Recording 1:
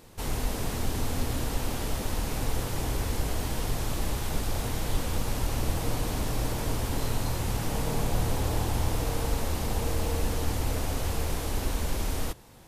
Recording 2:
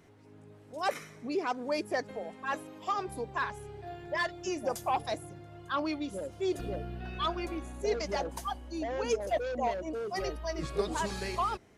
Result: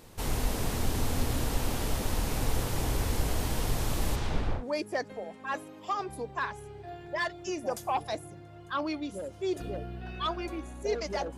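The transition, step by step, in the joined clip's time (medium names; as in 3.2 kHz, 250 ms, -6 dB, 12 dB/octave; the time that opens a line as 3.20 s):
recording 1
4.15–4.65 s: low-pass 6.9 kHz -> 1.4 kHz
4.59 s: go over to recording 2 from 1.58 s, crossfade 0.12 s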